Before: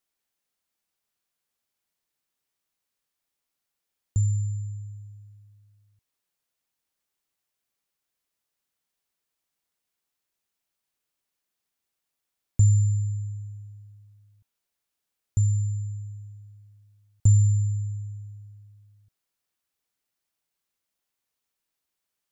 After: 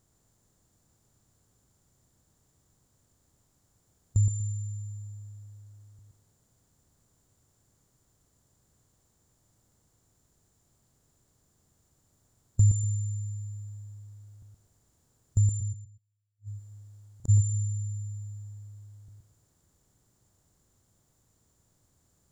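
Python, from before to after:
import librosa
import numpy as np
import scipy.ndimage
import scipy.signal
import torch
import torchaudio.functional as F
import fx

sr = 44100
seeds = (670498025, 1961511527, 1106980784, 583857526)

y = fx.bin_compress(x, sr, power=0.6)
y = fx.gate_flip(y, sr, shuts_db=-28.0, range_db=-41, at=(15.6, 17.28), fade=0.02)
y = fx.echo_feedback(y, sr, ms=121, feedback_pct=24, wet_db=-5.0)
y = F.gain(torch.from_numpy(y), -3.0).numpy()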